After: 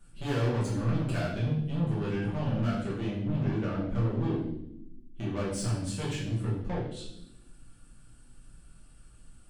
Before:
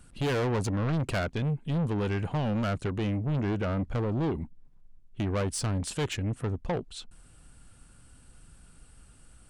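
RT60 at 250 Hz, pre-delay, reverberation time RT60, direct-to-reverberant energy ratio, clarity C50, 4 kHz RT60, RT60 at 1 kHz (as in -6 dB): 1.5 s, 5 ms, 0.80 s, -7.5 dB, 3.5 dB, 0.75 s, 0.60 s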